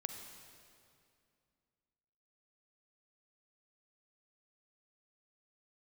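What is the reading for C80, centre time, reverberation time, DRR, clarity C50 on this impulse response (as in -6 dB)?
6.5 dB, 47 ms, 2.4 s, 5.0 dB, 5.5 dB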